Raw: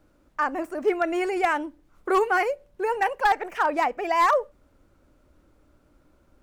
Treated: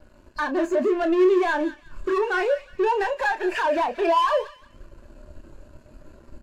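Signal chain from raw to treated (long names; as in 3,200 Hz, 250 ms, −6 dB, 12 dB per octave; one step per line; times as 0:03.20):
hearing-aid frequency compression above 3,700 Hz 1.5 to 1
high-shelf EQ 2,300 Hz +7.5 dB
downward compressor 4 to 1, threshold −37 dBFS, peak gain reduction 18 dB
EQ curve with evenly spaced ripples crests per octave 1.4, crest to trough 9 dB
leveller curve on the samples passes 5
double-tracking delay 30 ms −8 dB
on a send: delay with a high-pass on its return 178 ms, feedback 39%, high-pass 1,500 Hz, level −8 dB
on the sum: every bin expanded away from the loudest bin 1.5 to 1
level +5.5 dB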